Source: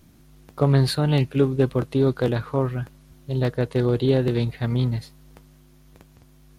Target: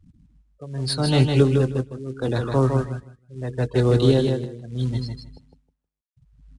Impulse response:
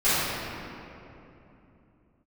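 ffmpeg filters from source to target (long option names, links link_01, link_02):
-filter_complex "[0:a]asplit=2[link_01][link_02];[link_02]adelay=23,volume=-11dB[link_03];[link_01][link_03]amix=inputs=2:normalize=0,tremolo=f=0.77:d=0.92,asettb=1/sr,asplit=3[link_04][link_05][link_06];[link_04]atrim=end=3.344[link_07];[link_05]atrim=start=3.34:end=3.89,asetpts=PTS-STARTPTS,afade=type=in:duration=0.004:curve=qsin,afade=type=out:start_time=0.546:duration=0.004:curve=qsin,adynamicequalizer=threshold=0.00501:dfrequency=170:dqfactor=4.6:tfrequency=170:tqfactor=4.6:attack=5:release=100:ratio=0.375:range=2:mode=cutabove:tftype=bell[link_08];[link_06]atrim=start=3.886[link_09];[link_07][link_08]acrossfade=duration=0.004:curve1=hsin:curve2=qsin[link_10];[link_10][link_09]acrossfade=duration=0.004:curve1=qsin:curve2=hsin,afftfilt=real='re*gte(hypot(re,im),0.0126)':imag='im*gte(hypot(re,im),0.0126)':win_size=1024:overlap=0.75,acrossover=split=370|630|2900[link_11][link_12][link_13][link_14];[link_14]crystalizer=i=2:c=0[link_15];[link_11][link_12][link_13][link_15]amix=inputs=4:normalize=0,equalizer=frequency=5300:width_type=o:width=0.22:gain=9,acrusher=bits=7:mode=log:mix=0:aa=0.000001,aecho=1:1:157|314|471:0.562|0.0956|0.0163,acrossover=split=450|3000[link_16][link_17][link_18];[link_17]acompressor=threshold=-23dB:ratio=10[link_19];[link_16][link_19][link_18]amix=inputs=3:normalize=0,volume=3dB" -ar 22050 -c:a adpcm_ima_wav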